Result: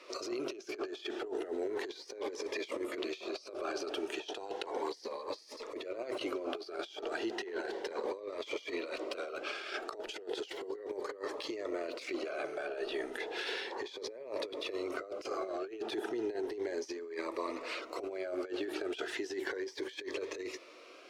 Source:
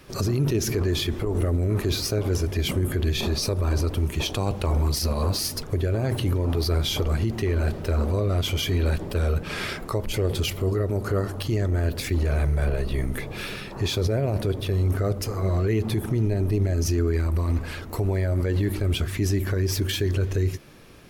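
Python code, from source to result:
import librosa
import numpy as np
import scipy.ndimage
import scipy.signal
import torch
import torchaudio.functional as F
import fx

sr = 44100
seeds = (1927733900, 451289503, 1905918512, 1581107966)

y = scipy.signal.sosfilt(scipy.signal.cheby2(4, 40, 190.0, 'highpass', fs=sr, output='sos'), x)
y = fx.high_shelf(y, sr, hz=7900.0, db=6.0)
y = fx.over_compress(y, sr, threshold_db=-34.0, ratio=-0.5)
y = fx.air_absorb(y, sr, metres=140.0)
y = fx.notch_cascade(y, sr, direction='rising', hz=0.34)
y = y * 10.0 ** (-1.5 / 20.0)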